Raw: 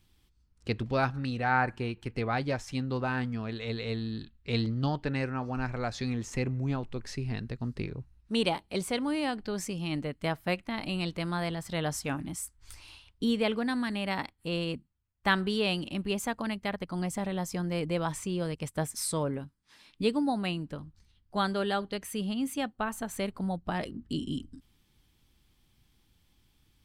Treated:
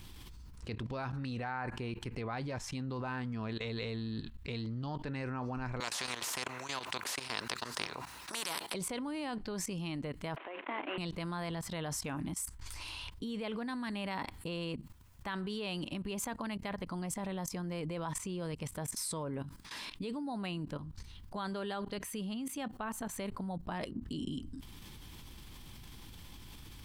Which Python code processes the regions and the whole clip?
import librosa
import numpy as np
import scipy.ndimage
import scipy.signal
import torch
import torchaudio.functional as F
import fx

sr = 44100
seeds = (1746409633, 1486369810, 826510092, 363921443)

y = fx.chain(x, sr, fx.highpass(hz=600.0, slope=12),
    fx.spectral_comp(ratio=4.0), at=(5.8, 8.74))
y = fx.chain(y, sr, fx.cvsd(bps=16000),
    fx.steep_highpass(hz=280.0, slope=48),
    fx.over_compress(threshold_db=-38.0, ratio=-1.0), at=(10.36, 10.98))
y = fx.level_steps(y, sr, step_db=20)
y = fx.peak_eq(y, sr, hz=1000.0, db=6.0, octaves=0.23)
y = fx.env_flatten(y, sr, amount_pct=70)